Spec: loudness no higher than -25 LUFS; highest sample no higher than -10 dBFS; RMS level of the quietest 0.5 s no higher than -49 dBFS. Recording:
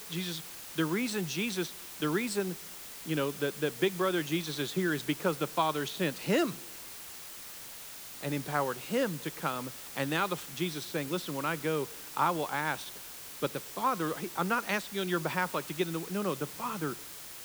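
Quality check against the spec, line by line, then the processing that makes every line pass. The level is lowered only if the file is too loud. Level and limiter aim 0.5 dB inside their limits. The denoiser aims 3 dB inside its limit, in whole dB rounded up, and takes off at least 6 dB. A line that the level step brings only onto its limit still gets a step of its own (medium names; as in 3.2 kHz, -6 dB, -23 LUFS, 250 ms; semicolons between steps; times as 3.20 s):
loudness -33.0 LUFS: pass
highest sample -13.5 dBFS: pass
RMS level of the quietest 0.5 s -46 dBFS: fail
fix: noise reduction 6 dB, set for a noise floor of -46 dBFS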